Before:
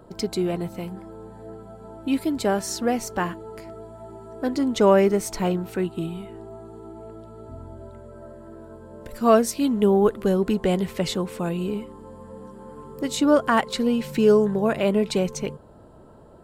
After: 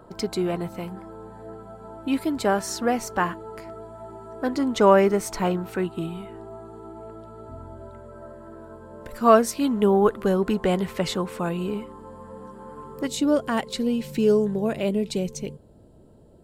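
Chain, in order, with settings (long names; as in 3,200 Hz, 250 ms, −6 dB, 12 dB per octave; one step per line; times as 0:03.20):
parametric band 1,200 Hz +6 dB 1.5 octaves, from 0:13.07 −7.5 dB, from 0:14.89 −14.5 dB
level −1.5 dB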